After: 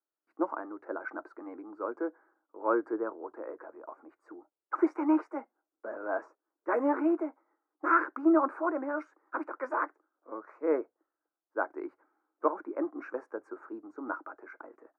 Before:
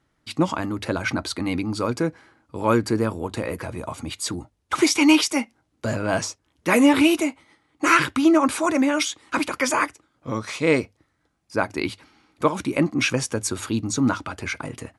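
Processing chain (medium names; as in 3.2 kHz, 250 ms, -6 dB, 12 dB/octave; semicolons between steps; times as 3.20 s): elliptic band-pass 330–1500 Hz, stop band 40 dB; three bands expanded up and down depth 40%; trim -8 dB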